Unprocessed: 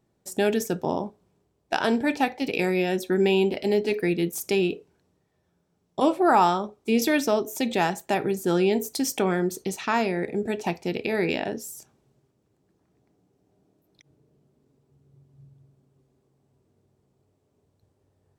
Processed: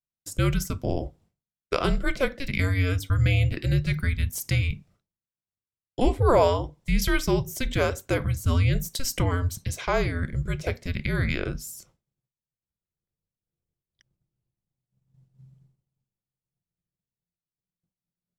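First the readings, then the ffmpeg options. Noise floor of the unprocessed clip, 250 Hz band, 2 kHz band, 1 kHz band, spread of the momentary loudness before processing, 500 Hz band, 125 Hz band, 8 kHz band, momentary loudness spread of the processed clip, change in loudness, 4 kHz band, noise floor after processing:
-72 dBFS, -5.0 dB, -0.5 dB, -6.0 dB, 8 LU, -4.0 dB, +11.0 dB, -0.5 dB, 8 LU, -1.0 dB, -1.0 dB, under -85 dBFS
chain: -af "agate=range=-33dB:threshold=-52dB:ratio=3:detection=peak,afreqshift=-270"

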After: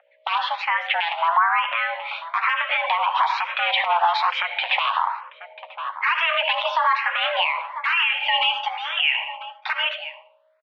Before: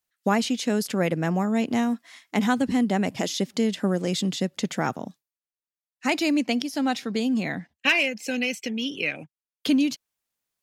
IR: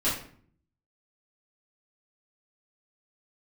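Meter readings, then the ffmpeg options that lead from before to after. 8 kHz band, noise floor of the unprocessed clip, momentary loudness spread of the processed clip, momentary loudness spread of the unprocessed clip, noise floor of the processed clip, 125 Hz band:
under -20 dB, under -85 dBFS, 11 LU, 7 LU, -58 dBFS, under -40 dB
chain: -filter_complex "[0:a]asplit=2[a][b];[b]acrusher=bits=5:mode=log:mix=0:aa=0.000001,volume=-9.5dB[c];[a][c]amix=inputs=2:normalize=0,aeval=exprs='(mod(3.55*val(0)+1,2)-1)/3.55':c=same,aeval=exprs='val(0)+0.01*(sin(2*PI*60*n/s)+sin(2*PI*2*60*n/s)/2+sin(2*PI*3*60*n/s)/3+sin(2*PI*4*60*n/s)/4+sin(2*PI*5*60*n/s)/5)':c=same,dynaudnorm=f=230:g=21:m=11.5dB,flanger=delay=4.8:depth=5.2:regen=-43:speed=0.51:shape=sinusoidal,asplit=2[d][e];[1:a]atrim=start_sample=2205,adelay=56[f];[e][f]afir=irnorm=-1:irlink=0,volume=-24dB[g];[d][g]amix=inputs=2:normalize=0,asoftclip=type=hard:threshold=-13.5dB,highpass=f=560:t=q:w=0.5412,highpass=f=560:t=q:w=1.307,lowpass=f=2.7k:t=q:w=0.5176,lowpass=f=2.7k:t=q:w=0.7071,lowpass=f=2.7k:t=q:w=1.932,afreqshift=330,asplit=2[h][i];[i]adelay=991.3,volume=-22dB,highshelf=f=4k:g=-22.3[j];[h][j]amix=inputs=2:normalize=0,acompressor=threshold=-33dB:ratio=4,alimiter=level_in=29.5dB:limit=-1dB:release=50:level=0:latency=1,asplit=2[k][l];[l]afreqshift=1.1[m];[k][m]amix=inputs=2:normalize=1,volume=-7.5dB"

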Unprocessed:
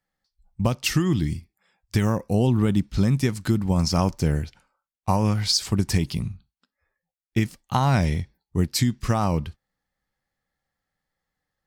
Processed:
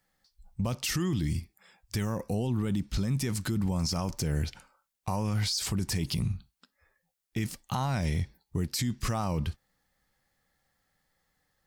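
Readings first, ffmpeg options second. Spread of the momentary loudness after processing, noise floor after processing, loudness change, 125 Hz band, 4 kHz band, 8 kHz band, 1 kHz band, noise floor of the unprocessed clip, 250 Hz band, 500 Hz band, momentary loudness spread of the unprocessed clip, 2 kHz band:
7 LU, -81 dBFS, -8.0 dB, -7.5 dB, -6.5 dB, -4.0 dB, -9.0 dB, under -85 dBFS, -8.0 dB, -9.0 dB, 8 LU, -7.0 dB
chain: -af "highshelf=f=4.9k:g=5,acompressor=threshold=-28dB:ratio=2.5,alimiter=level_in=4dB:limit=-24dB:level=0:latency=1:release=19,volume=-4dB,volume=6dB"

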